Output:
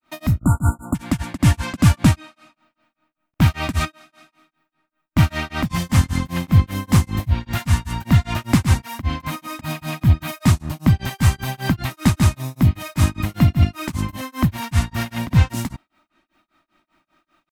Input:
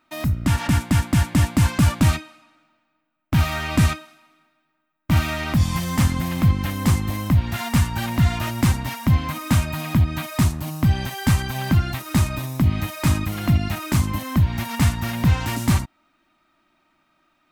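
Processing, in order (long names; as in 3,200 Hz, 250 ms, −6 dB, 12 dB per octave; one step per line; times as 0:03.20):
time-frequency box erased 0:00.39–0:00.93, 1,500–6,900 Hz
granular cloud 206 ms, grains 5.1 per second, pitch spread up and down by 0 semitones
level +4.5 dB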